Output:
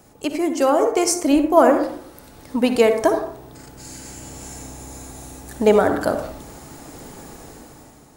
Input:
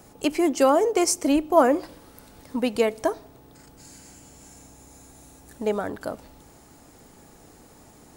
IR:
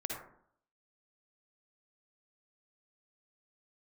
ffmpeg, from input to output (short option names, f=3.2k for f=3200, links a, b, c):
-filter_complex "[0:a]dynaudnorm=f=250:g=7:m=13dB,asplit=2[a][b];[1:a]atrim=start_sample=2205[c];[b][c]afir=irnorm=-1:irlink=0,volume=-2dB[d];[a][d]amix=inputs=2:normalize=0,volume=-5dB"